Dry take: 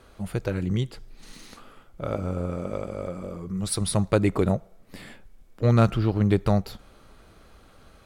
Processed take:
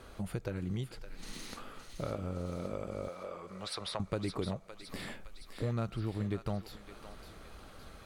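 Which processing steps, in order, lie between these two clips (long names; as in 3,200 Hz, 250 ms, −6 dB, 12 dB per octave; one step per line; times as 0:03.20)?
0:03.08–0:04.00: three-way crossover with the lows and the highs turned down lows −21 dB, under 520 Hz, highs −22 dB, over 4,600 Hz
downward compressor 3 to 1, threshold −38 dBFS, peak gain reduction 18.5 dB
feedback echo with a high-pass in the loop 564 ms, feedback 61%, high-pass 1,100 Hz, level −7.5 dB
level +1 dB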